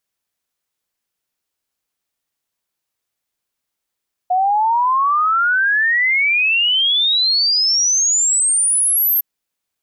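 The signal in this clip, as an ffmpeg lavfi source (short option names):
-f lavfi -i "aevalsrc='0.237*clip(min(t,4.91-t)/0.01,0,1)*sin(2*PI*720*4.91/log(13000/720)*(exp(log(13000/720)*t/4.91)-1))':d=4.91:s=44100"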